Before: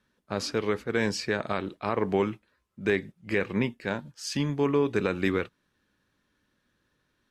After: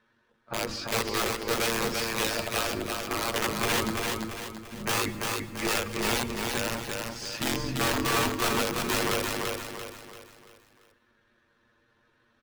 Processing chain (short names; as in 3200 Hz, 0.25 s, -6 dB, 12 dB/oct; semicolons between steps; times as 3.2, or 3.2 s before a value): octaver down 2 oct, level -3 dB; notches 50/100/150/200/250/300 Hz; in parallel at -1 dB: compressor 8:1, threshold -35 dBFS, peak gain reduction 16 dB; on the sum: overdrive pedal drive 10 dB, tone 1300 Hz, clips at -12 dBFS; wrapped overs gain 20.5 dB; granular stretch 1.7×, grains 42 ms; feedback echo 0.34 s, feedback 42%, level -3.5 dB; on a send at -17 dB: reverb RT60 1.2 s, pre-delay 88 ms